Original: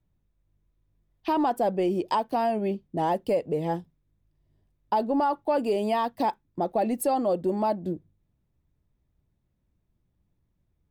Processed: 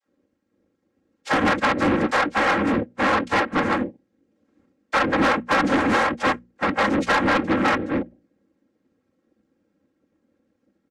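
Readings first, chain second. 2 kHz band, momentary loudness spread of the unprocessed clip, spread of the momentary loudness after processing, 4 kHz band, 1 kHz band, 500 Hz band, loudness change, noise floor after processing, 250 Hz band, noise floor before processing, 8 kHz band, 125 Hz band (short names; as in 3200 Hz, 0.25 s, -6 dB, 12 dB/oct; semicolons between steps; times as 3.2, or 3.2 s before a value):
+21.0 dB, 6 LU, 6 LU, +13.0 dB, +5.0 dB, +1.5 dB, +6.0 dB, -73 dBFS, +6.5 dB, -74 dBFS, +4.5 dB, +5.5 dB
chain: dispersion lows, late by 76 ms, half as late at 360 Hz; noise vocoder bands 3; LPF 3200 Hz 6 dB/oct; comb 3.7 ms, depth 81%; soft clip -22.5 dBFS, distortion -9 dB; notches 60/120/180/240 Hz; Doppler distortion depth 0.23 ms; gain +8 dB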